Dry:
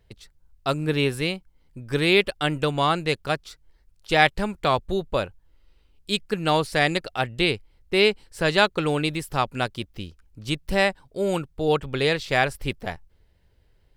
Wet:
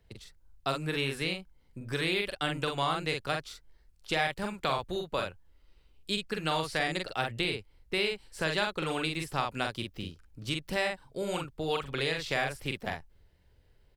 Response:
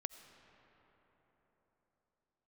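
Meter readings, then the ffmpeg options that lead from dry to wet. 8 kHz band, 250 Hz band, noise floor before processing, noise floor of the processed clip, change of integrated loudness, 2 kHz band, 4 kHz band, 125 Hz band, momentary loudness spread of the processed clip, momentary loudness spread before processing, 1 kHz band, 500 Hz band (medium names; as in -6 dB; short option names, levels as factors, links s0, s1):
-5.0 dB, -9.5 dB, -62 dBFS, -64 dBFS, -8.5 dB, -7.5 dB, -6.5 dB, -9.0 dB, 10 LU, 11 LU, -8.0 dB, -10.0 dB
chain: -filter_complex "[0:a]asplit=2[s0][s1];[s1]adelay=44,volume=0.668[s2];[s0][s2]amix=inputs=2:normalize=0,acrossover=split=93|890|7900[s3][s4][s5][s6];[s3]acompressor=threshold=0.00501:ratio=4[s7];[s4]acompressor=threshold=0.0316:ratio=4[s8];[s5]acompressor=threshold=0.0501:ratio=4[s9];[s6]acompressor=threshold=0.00355:ratio=4[s10];[s7][s8][s9][s10]amix=inputs=4:normalize=0,volume=0.668"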